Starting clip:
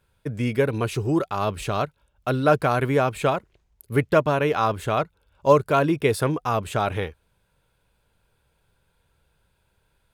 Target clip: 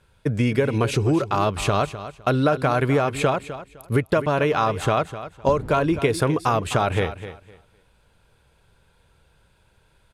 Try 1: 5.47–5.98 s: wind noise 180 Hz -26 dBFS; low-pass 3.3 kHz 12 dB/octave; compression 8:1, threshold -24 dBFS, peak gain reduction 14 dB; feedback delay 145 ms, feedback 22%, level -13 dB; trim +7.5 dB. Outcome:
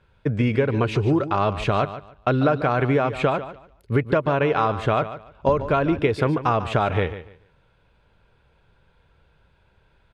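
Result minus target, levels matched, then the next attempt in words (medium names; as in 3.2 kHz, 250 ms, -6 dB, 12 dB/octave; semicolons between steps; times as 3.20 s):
8 kHz band -14.0 dB; echo 110 ms early
5.47–5.98 s: wind noise 180 Hz -26 dBFS; low-pass 9.9 kHz 12 dB/octave; compression 8:1, threshold -24 dBFS, peak gain reduction 14 dB; feedback delay 255 ms, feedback 22%, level -13 dB; trim +7.5 dB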